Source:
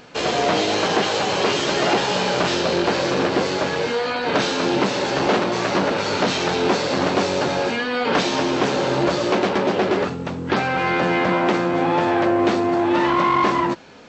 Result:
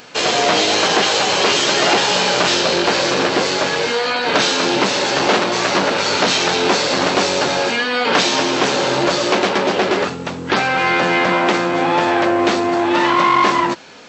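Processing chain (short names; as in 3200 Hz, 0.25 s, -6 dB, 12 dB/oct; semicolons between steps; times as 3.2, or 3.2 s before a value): tilt +2 dB/oct; gain +4.5 dB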